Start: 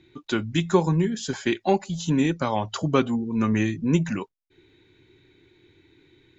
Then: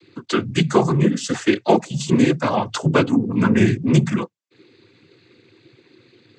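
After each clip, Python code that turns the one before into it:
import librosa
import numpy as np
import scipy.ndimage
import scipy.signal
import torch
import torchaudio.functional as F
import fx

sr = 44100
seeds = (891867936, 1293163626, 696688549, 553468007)

y = fx.noise_vocoder(x, sr, seeds[0], bands=16)
y = y * librosa.db_to_amplitude(6.0)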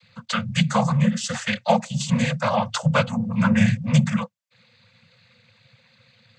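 y = scipy.signal.sosfilt(scipy.signal.ellip(3, 1.0, 40, [220.0, 520.0], 'bandstop', fs=sr, output='sos'), x)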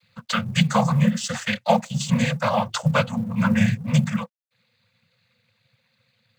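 y = fx.law_mismatch(x, sr, coded='A')
y = fx.rider(y, sr, range_db=3, speed_s=2.0)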